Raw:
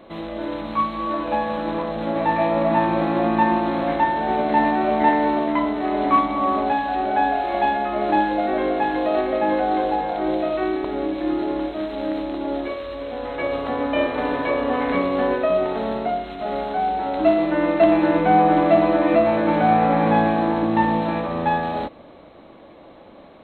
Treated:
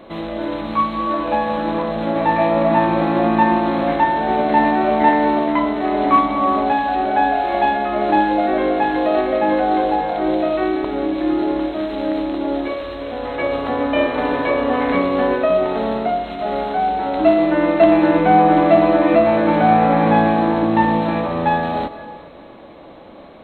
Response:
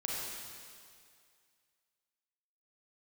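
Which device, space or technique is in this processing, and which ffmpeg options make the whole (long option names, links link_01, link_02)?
ducked reverb: -filter_complex "[0:a]asplit=3[link_01][link_02][link_03];[1:a]atrim=start_sample=2205[link_04];[link_02][link_04]afir=irnorm=-1:irlink=0[link_05];[link_03]apad=whole_len=1033611[link_06];[link_05][link_06]sidechaincompress=threshold=-28dB:ratio=8:attack=16:release=172,volume=-12.5dB[link_07];[link_01][link_07]amix=inputs=2:normalize=0,volume=3dB"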